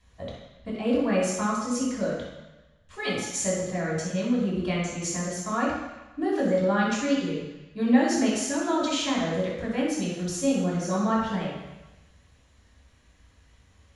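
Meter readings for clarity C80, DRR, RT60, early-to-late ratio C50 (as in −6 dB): 3.0 dB, −6.0 dB, 1.0 s, 0.0 dB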